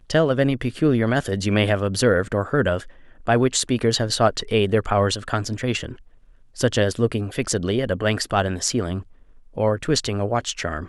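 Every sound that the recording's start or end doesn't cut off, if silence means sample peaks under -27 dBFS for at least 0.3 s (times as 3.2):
3.27–5.93
6.59–9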